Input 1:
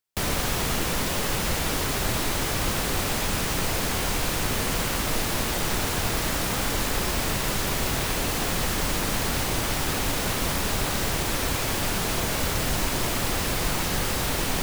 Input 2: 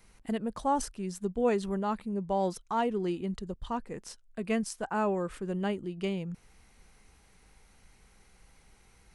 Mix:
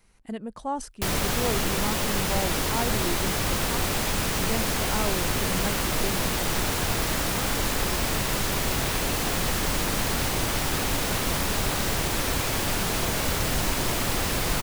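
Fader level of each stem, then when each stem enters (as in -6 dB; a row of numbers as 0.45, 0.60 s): 0.0, -2.0 dB; 0.85, 0.00 s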